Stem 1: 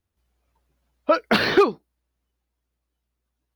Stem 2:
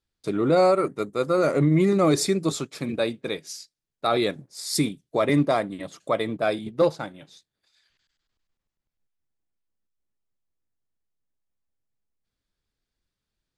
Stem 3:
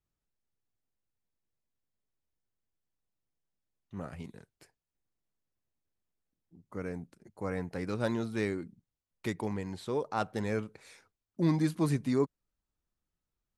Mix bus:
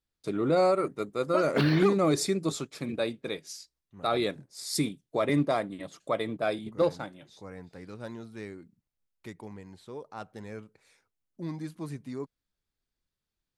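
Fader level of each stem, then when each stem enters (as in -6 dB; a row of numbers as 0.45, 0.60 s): -11.5, -5.0, -9.0 dB; 0.25, 0.00, 0.00 s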